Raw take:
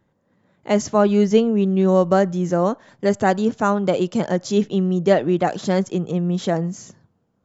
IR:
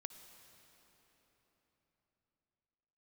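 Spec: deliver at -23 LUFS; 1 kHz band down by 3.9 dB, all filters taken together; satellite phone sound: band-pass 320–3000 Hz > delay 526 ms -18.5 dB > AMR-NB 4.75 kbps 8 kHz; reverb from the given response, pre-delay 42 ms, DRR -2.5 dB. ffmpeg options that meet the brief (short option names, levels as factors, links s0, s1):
-filter_complex "[0:a]equalizer=f=1000:t=o:g=-5.5,asplit=2[s0][s1];[1:a]atrim=start_sample=2205,adelay=42[s2];[s1][s2]afir=irnorm=-1:irlink=0,volume=2.11[s3];[s0][s3]amix=inputs=2:normalize=0,highpass=320,lowpass=3000,aecho=1:1:526:0.119,volume=0.708" -ar 8000 -c:a libopencore_amrnb -b:a 4750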